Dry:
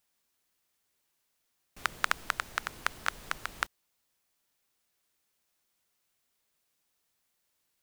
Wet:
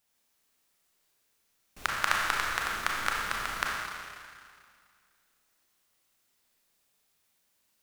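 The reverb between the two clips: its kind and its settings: Schroeder reverb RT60 2.1 s, combs from 28 ms, DRR -3 dB

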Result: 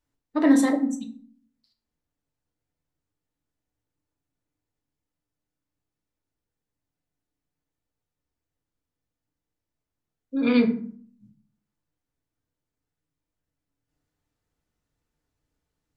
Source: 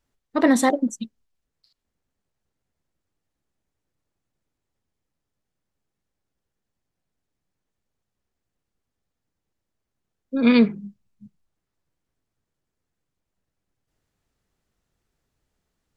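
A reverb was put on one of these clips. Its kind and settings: FDN reverb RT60 0.5 s, low-frequency decay 1.45×, high-frequency decay 0.6×, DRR 2 dB; gain -7 dB

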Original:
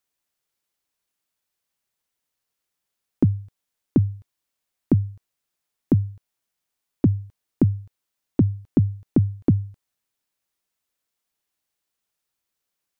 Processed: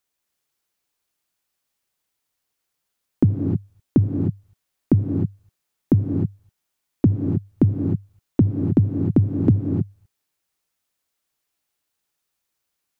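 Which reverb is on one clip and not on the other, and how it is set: non-linear reverb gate 0.33 s rising, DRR 3 dB; gain +1.5 dB

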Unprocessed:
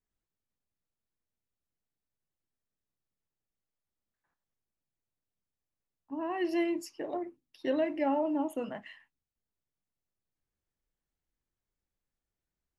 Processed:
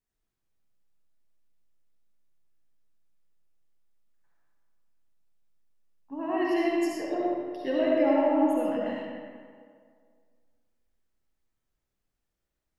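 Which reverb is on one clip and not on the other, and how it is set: digital reverb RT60 2 s, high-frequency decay 0.6×, pre-delay 30 ms, DRR -4.5 dB

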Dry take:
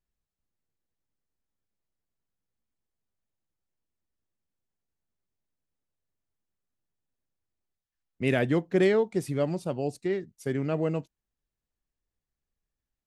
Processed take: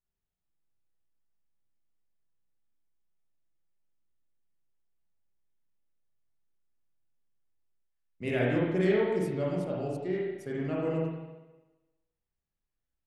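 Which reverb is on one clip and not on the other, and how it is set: spring tank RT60 1.1 s, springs 33/43/49 ms, chirp 60 ms, DRR -5 dB; gain -8.5 dB

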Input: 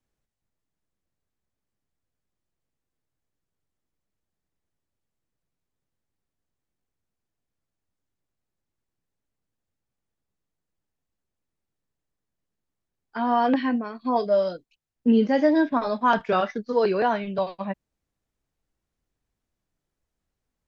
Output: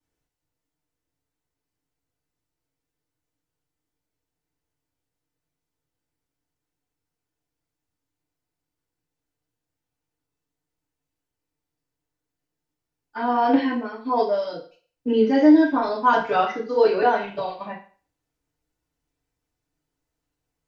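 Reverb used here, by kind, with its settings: FDN reverb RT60 0.41 s, low-frequency decay 0.75×, high-frequency decay 1×, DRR -7 dB; gain -5.5 dB

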